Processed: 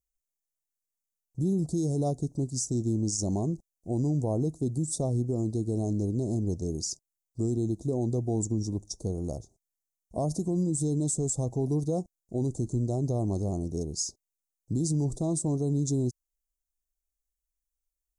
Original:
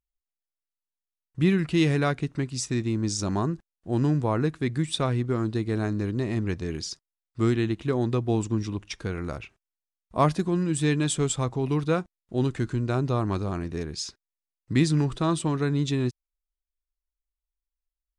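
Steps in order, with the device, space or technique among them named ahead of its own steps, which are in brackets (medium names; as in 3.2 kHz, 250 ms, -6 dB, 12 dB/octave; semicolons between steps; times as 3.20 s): elliptic band-stop 720–6400 Hz, stop band 60 dB; over-bright horn tweeter (resonant high shelf 2.9 kHz +6.5 dB, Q 3; peak limiter -20.5 dBFS, peak gain reduction 10.5 dB)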